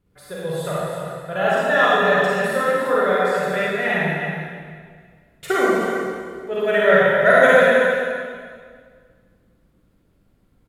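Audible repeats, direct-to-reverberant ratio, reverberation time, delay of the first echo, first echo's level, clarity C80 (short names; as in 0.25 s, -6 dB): 1, -8.0 dB, 1.9 s, 0.315 s, -8.0 dB, -2.5 dB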